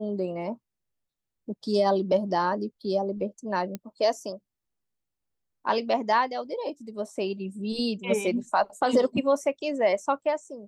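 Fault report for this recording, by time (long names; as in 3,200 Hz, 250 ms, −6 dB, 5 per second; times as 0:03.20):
0:03.75: click −19 dBFS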